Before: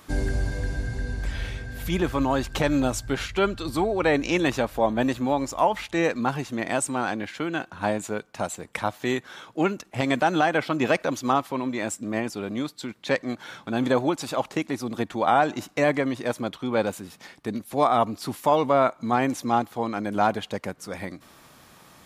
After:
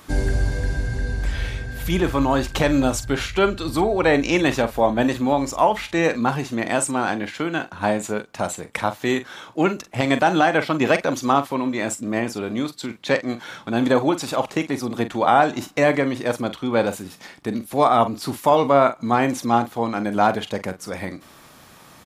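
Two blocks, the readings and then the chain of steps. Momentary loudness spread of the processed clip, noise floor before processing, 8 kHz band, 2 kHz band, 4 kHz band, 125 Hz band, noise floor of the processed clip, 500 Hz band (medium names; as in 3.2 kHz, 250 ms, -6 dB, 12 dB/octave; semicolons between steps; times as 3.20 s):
11 LU, -53 dBFS, +4.5 dB, +4.5 dB, +4.5 dB, +4.5 dB, -48 dBFS, +4.5 dB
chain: doubling 43 ms -11.5 dB; trim +4 dB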